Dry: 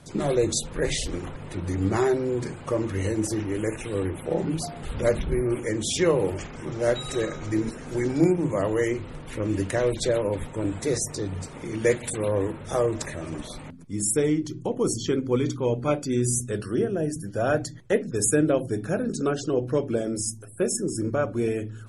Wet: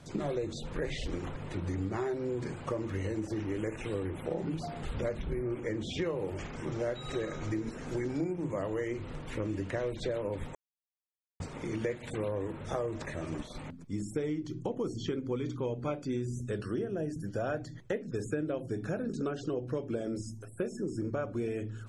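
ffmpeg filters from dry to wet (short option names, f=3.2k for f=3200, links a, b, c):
-filter_complex "[0:a]asettb=1/sr,asplit=3[a][b][c];[a]atrim=end=5.424[d];[b]atrim=start=5.42:end=6.02,asetpts=PTS-STARTPTS,afade=t=in:d=0.004:c=qsin,afade=t=out:st=0.596:d=0.004:c=qsin,aemphasis=mode=reproduction:type=50fm[e];[c]atrim=start=6.016[f];[d][e]acrossfade=d=0.004:c1=hsin:c2=qsin[g];[g][f]acrossfade=d=0.004:c1=qsin:c2=hsin,asettb=1/sr,asplit=3[h][i][j];[h]atrim=end=12.824[k];[i]atrim=start=12.82:end=13.55,asetpts=PTS-STARTPTS,afade=t=in:d=0.004:c=qsin,afade=t=out:st=0.726:d=0.004:c=qsin,agate=range=-33dB:threshold=-34dB:ratio=3:release=100:detection=peak[l];[j]atrim=start=13.546[m];[k][l]acrossfade=d=0.004:c1=hsin:c2=qsin[n];[n][m]acrossfade=d=0.004:c1=qsin:c2=hsin,asplit=3[o][p][q];[o]atrim=end=10.55,asetpts=PTS-STARTPTS,afade=t=out:st=10.546:d=0.004:c=hsin[r];[p]atrim=start=10.55:end=11.4,asetpts=PTS-STARTPTS,volume=0[s];[q]atrim=start=11.4,asetpts=PTS-STARTPTS,afade=t=in:d=0.004:c=hsin[t];[r][s][t]concat=n=3:v=0:a=1,acrossover=split=3500[u][v];[v]acompressor=threshold=-46dB:ratio=4:attack=1:release=60[w];[u][w]amix=inputs=2:normalize=0,equalizer=f=9.9k:w=3.8:g=-12,acompressor=threshold=-28dB:ratio=6,volume=-2.5dB"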